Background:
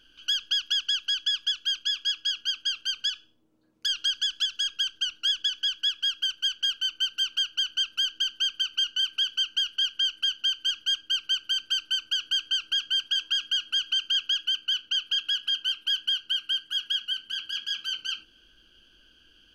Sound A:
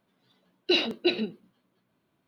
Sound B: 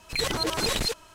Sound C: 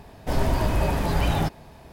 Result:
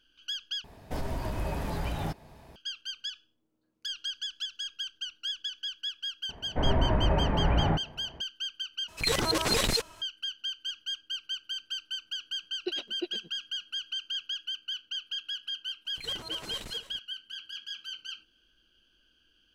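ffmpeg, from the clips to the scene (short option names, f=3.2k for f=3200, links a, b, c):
-filter_complex "[3:a]asplit=2[a][b];[2:a]asplit=2[c][d];[0:a]volume=-9dB[e];[a]alimiter=limit=-17.5dB:level=0:latency=1:release=285[f];[b]lowpass=f=2.1k:w=0.5412,lowpass=f=2.1k:w=1.3066[g];[1:a]aeval=exprs='val(0)*pow(10,-37*(0.5-0.5*cos(2*PI*8.5*n/s))/20)':c=same[h];[d]aecho=1:1:291:0.237[i];[e]asplit=3[j][k][l];[j]atrim=end=0.644[m];[f]atrim=end=1.92,asetpts=PTS-STARTPTS,volume=-5.5dB[n];[k]atrim=start=2.556:end=8.884[o];[c]atrim=end=1.14[p];[l]atrim=start=10.016[q];[g]atrim=end=1.92,asetpts=PTS-STARTPTS,volume=-2.5dB,afade=t=in:d=0.004:c=hsin,afade=t=out:st=1.916:d=0.004:c=hsin,adelay=6290[r];[h]atrim=end=2.27,asetpts=PTS-STARTPTS,volume=-7.5dB,afade=t=in:d=0.004:c=hsin,afade=t=out:st=2.266:d=0.004:c=hsin,adelay=11970[s];[i]atrim=end=1.14,asetpts=PTS-STARTPTS,volume=-15.5dB,afade=t=in:d=0.004:c=hsin,afade=t=out:st=1.136:d=0.004:c=hsin,adelay=15850[t];[m][n]acrossfade=d=0.004:c1=hsin:c2=hsin[u];[u][o]acrossfade=d=0.004:c1=hsin:c2=hsin[v];[v][p]acrossfade=d=0.004:c1=hsin:c2=hsin[w];[w][q]acrossfade=d=0.004:c1=hsin:c2=hsin[x];[x][r][s][t]amix=inputs=4:normalize=0"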